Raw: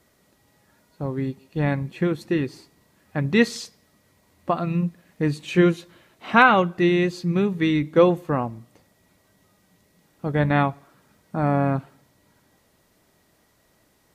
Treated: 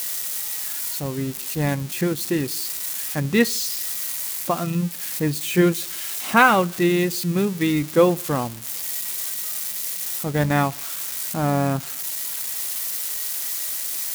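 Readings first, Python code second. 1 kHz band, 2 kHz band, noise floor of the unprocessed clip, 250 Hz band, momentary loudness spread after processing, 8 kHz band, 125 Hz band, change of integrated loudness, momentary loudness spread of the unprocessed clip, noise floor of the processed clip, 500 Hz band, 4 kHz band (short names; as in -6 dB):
0.0 dB, +0.5 dB, -63 dBFS, 0.0 dB, 7 LU, +20.5 dB, 0.0 dB, 0.0 dB, 14 LU, -33 dBFS, 0.0 dB, +6.5 dB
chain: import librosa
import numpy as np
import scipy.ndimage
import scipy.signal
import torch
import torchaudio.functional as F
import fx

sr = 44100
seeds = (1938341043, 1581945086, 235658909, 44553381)

y = x + 0.5 * 10.0 ** (-20.0 / 20.0) * np.diff(np.sign(x), prepend=np.sign(x[:1]))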